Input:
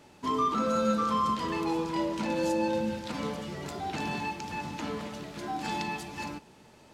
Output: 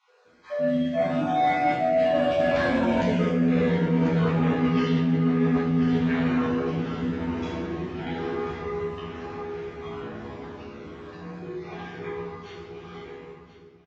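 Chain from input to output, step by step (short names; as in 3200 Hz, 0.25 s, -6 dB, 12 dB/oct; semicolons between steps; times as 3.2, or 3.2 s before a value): random spectral dropouts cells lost 35%; Doppler pass-by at 1.57, 30 m/s, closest 10 m; frequency shift +24 Hz; resonant low shelf 360 Hz -9 dB, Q 1.5; on a send: echo with dull and thin repeats by turns 0.259 s, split 950 Hz, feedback 62%, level -7.5 dB; on the sum: shoebox room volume 100 m³, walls mixed, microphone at 1.9 m; AGC gain up to 9 dB; comb 6 ms, depth 81%; speed mistake 15 ips tape played at 7.5 ips; dynamic EQ 2100 Hz, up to +5 dB, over -40 dBFS, Q 1.3; reverse; compressor 16:1, threshold -22 dBFS, peak gain reduction 17.5 dB; reverse; gain +3.5 dB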